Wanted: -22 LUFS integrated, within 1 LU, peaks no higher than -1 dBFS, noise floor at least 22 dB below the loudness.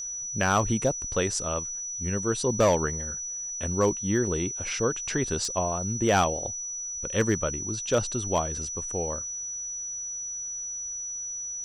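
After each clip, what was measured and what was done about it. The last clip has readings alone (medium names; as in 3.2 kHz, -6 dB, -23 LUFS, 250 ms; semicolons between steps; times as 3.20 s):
clipped samples 0.3%; clipping level -15.0 dBFS; steady tone 5.9 kHz; tone level -32 dBFS; loudness -27.5 LUFS; peak level -15.0 dBFS; loudness target -22.0 LUFS
-> clip repair -15 dBFS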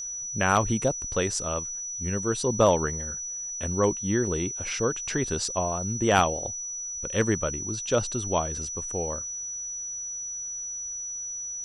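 clipped samples 0.0%; steady tone 5.9 kHz; tone level -32 dBFS
-> band-stop 5.9 kHz, Q 30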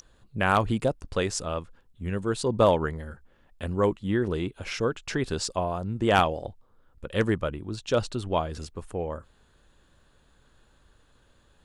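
steady tone not found; loudness -27.5 LUFS; peak level -5.5 dBFS; loudness target -22.0 LUFS
-> trim +5.5 dB; peak limiter -1 dBFS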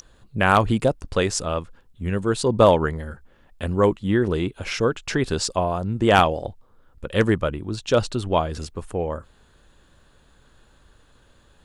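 loudness -22.0 LUFS; peak level -1.0 dBFS; noise floor -57 dBFS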